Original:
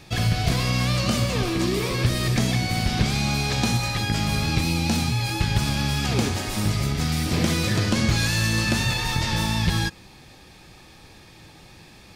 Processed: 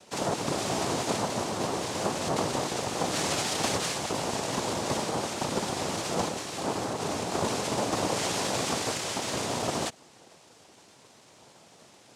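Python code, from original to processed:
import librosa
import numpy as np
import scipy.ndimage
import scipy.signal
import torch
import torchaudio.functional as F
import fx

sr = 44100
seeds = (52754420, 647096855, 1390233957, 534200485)

y = fx.peak_eq(x, sr, hz=2100.0, db=11.0, octaves=0.47, at=(3.11, 3.95))
y = fx.noise_vocoder(y, sr, seeds[0], bands=2)
y = y * 10.0 ** (-6.5 / 20.0)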